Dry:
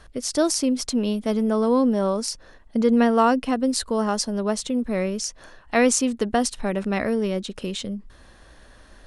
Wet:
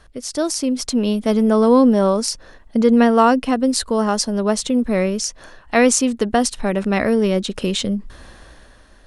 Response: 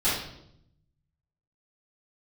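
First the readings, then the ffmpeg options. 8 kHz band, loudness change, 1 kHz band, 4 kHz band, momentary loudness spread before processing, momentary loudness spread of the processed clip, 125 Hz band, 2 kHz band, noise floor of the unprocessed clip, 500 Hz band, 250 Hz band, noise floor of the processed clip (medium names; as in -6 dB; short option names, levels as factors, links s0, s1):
+4.0 dB, +5.0 dB, +5.0 dB, +5.0 dB, 11 LU, 10 LU, no reading, +5.0 dB, -50 dBFS, +5.5 dB, +5.5 dB, -47 dBFS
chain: -af "dynaudnorm=f=120:g=13:m=3.98,volume=0.891"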